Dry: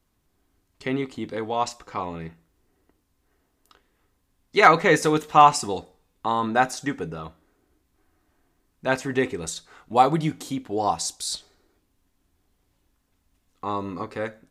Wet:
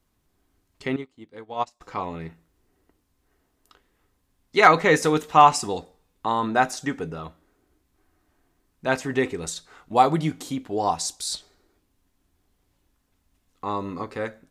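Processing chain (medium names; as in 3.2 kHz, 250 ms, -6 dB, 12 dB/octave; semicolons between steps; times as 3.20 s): 0.96–1.81 s: upward expansion 2.5:1, over -36 dBFS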